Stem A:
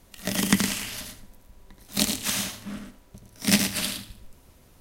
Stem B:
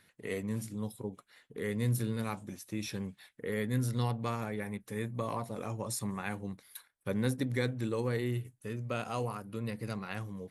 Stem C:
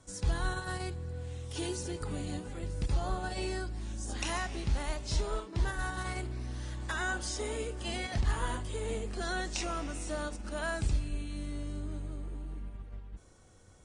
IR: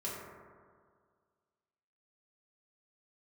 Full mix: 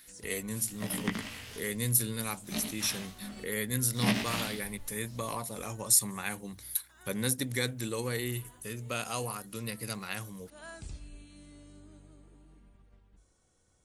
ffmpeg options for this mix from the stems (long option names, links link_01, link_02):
-filter_complex "[0:a]acrossover=split=3900[link_01][link_02];[link_02]acompressor=threshold=-41dB:ratio=4:attack=1:release=60[link_03];[link_01][link_03]amix=inputs=2:normalize=0,flanger=delay=15:depth=3.2:speed=0.7,adelay=550,afade=type=in:start_time=3.77:duration=0.58:silence=0.473151[link_04];[1:a]crystalizer=i=6:c=0,volume=-2.5dB,asplit=2[link_05][link_06];[2:a]highshelf=frequency=4300:gain=7,volume=-12dB[link_07];[link_06]apad=whole_len=610407[link_08];[link_07][link_08]sidechaincompress=threshold=-47dB:ratio=8:attack=8.1:release=345[link_09];[link_04][link_05][link_09]amix=inputs=3:normalize=0,bandreject=frequency=50:width_type=h:width=6,bandreject=frequency=100:width_type=h:width=6"